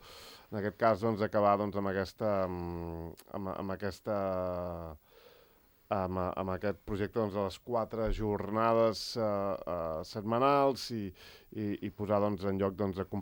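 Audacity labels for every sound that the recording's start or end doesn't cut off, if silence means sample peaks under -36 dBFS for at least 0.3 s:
0.530000	4.930000	sound
5.910000	11.090000	sound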